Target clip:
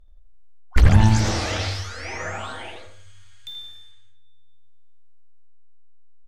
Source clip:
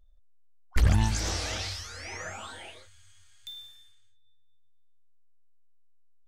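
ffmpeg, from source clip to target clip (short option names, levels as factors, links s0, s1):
-filter_complex "[0:a]aemphasis=mode=reproduction:type=cd,asplit=2[s0][s1];[s1]adelay=82,lowpass=f=1900:p=1,volume=0.631,asplit=2[s2][s3];[s3]adelay=82,lowpass=f=1900:p=1,volume=0.38,asplit=2[s4][s5];[s5]adelay=82,lowpass=f=1900:p=1,volume=0.38,asplit=2[s6][s7];[s7]adelay=82,lowpass=f=1900:p=1,volume=0.38,asplit=2[s8][s9];[s9]adelay=82,lowpass=f=1900:p=1,volume=0.38[s10];[s0][s2][s4][s6][s8][s10]amix=inputs=6:normalize=0,volume=2.51"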